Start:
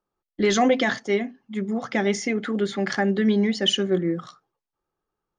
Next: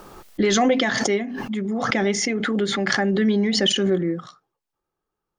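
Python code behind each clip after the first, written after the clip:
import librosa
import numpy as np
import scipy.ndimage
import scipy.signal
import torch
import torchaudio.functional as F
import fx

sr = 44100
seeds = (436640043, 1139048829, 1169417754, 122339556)

y = fx.pre_swell(x, sr, db_per_s=24.0)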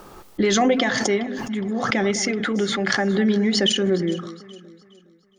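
y = fx.echo_alternate(x, sr, ms=207, hz=1400.0, feedback_pct=58, wet_db=-13)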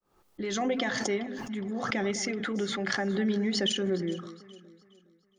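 y = fx.fade_in_head(x, sr, length_s=0.87)
y = y * 10.0 ** (-8.5 / 20.0)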